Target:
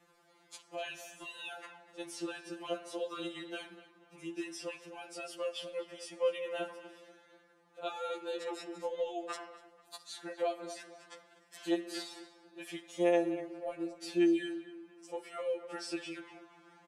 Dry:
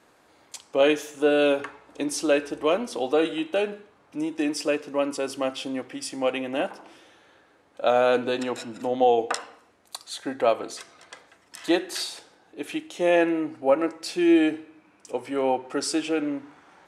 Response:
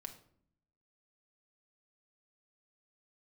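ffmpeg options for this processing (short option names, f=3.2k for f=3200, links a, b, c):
-filter_complex "[0:a]acrossover=split=160|3700[a][b][c];[a]acompressor=threshold=-56dB:ratio=4[d];[b]acompressor=threshold=-26dB:ratio=4[e];[c]acompressor=threshold=-41dB:ratio=4[f];[d][e][f]amix=inputs=3:normalize=0,asplit=2[g][h];[h]adelay=243,lowpass=f=3.1k:p=1,volume=-14dB,asplit=2[i][j];[j]adelay=243,lowpass=f=3.1k:p=1,volume=0.36,asplit=2[k][l];[l]adelay=243,lowpass=f=3.1k:p=1,volume=0.36[m];[g][i][k][m]amix=inputs=4:normalize=0,afftfilt=real='re*2.83*eq(mod(b,8),0)':imag='im*2.83*eq(mod(b,8),0)':win_size=2048:overlap=0.75,volume=-5.5dB"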